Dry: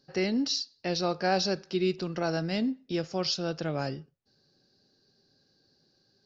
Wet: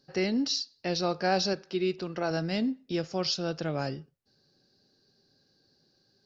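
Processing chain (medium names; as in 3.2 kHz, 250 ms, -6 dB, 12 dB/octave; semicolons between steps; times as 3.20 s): 1.53–2.31 s: tone controls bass -5 dB, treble -5 dB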